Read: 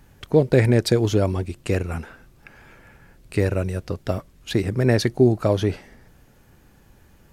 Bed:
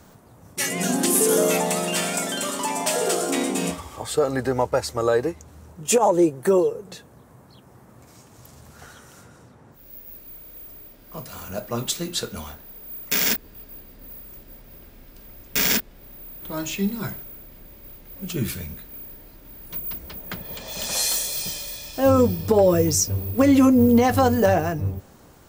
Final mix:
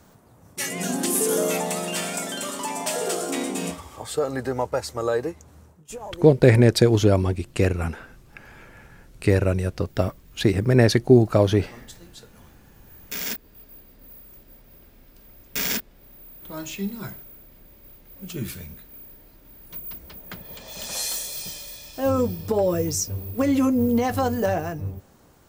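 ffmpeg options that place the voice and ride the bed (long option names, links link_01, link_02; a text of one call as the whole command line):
ffmpeg -i stem1.wav -i stem2.wav -filter_complex "[0:a]adelay=5900,volume=2dB[link_01];[1:a]volume=10.5dB,afade=type=out:start_time=5.6:duration=0.24:silence=0.16788,afade=type=in:start_time=12.72:duration=0.89:silence=0.199526[link_02];[link_01][link_02]amix=inputs=2:normalize=0" out.wav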